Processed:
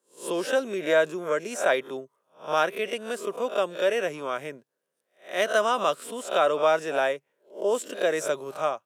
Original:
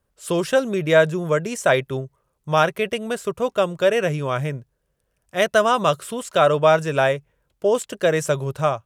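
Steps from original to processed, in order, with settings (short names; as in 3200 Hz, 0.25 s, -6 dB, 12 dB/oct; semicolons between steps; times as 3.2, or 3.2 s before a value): spectral swells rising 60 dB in 0.32 s; HPF 240 Hz 24 dB/oct; gain -6.5 dB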